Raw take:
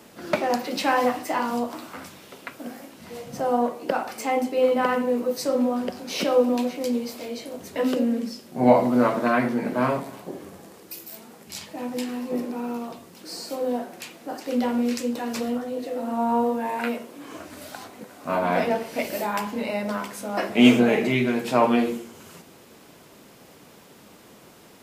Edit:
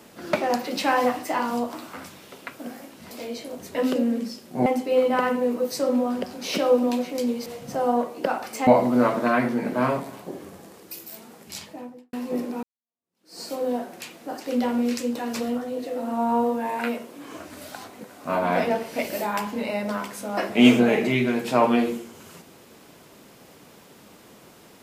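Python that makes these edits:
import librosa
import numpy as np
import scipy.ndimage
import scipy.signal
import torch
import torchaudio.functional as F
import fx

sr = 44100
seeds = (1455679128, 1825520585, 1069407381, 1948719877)

y = fx.studio_fade_out(x, sr, start_s=11.54, length_s=0.59)
y = fx.edit(y, sr, fx.swap(start_s=3.11, length_s=1.21, other_s=7.12, other_length_s=1.55),
    fx.fade_in_span(start_s=12.63, length_s=0.78, curve='exp'), tone=tone)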